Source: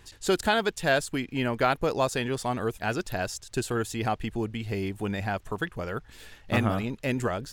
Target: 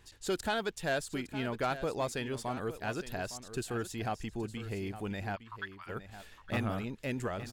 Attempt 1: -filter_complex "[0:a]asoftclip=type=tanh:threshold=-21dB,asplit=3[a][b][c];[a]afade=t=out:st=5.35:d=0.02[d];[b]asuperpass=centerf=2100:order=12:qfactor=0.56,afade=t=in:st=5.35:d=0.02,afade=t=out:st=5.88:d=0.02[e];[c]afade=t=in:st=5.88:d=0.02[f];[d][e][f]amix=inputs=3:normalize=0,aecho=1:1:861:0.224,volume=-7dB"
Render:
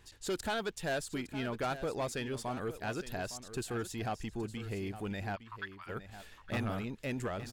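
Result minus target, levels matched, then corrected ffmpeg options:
soft clip: distortion +7 dB
-filter_complex "[0:a]asoftclip=type=tanh:threshold=-15dB,asplit=3[a][b][c];[a]afade=t=out:st=5.35:d=0.02[d];[b]asuperpass=centerf=2100:order=12:qfactor=0.56,afade=t=in:st=5.35:d=0.02,afade=t=out:st=5.88:d=0.02[e];[c]afade=t=in:st=5.88:d=0.02[f];[d][e][f]amix=inputs=3:normalize=0,aecho=1:1:861:0.224,volume=-7dB"

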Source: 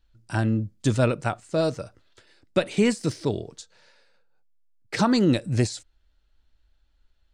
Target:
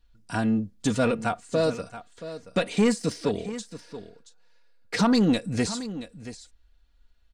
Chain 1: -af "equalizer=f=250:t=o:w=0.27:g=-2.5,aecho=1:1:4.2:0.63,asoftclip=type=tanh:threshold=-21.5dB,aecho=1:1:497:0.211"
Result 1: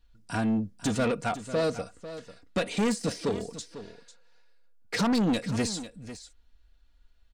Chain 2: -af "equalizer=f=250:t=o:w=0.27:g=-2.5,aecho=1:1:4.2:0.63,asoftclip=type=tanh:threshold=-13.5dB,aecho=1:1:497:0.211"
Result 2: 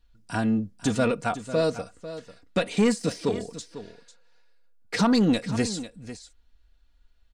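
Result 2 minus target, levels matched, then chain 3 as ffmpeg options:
echo 0.18 s early
-af "equalizer=f=250:t=o:w=0.27:g=-2.5,aecho=1:1:4.2:0.63,asoftclip=type=tanh:threshold=-13.5dB,aecho=1:1:677:0.211"

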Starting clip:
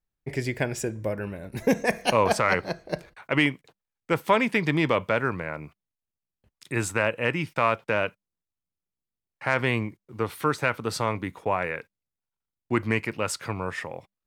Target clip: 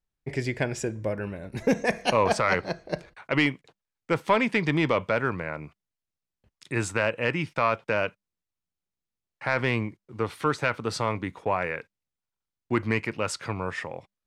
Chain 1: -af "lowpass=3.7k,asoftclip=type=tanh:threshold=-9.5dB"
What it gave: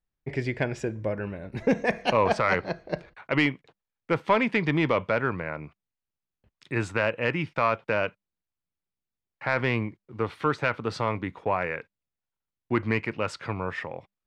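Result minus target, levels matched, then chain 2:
8000 Hz band -10.0 dB
-af "lowpass=8k,asoftclip=type=tanh:threshold=-9.5dB"

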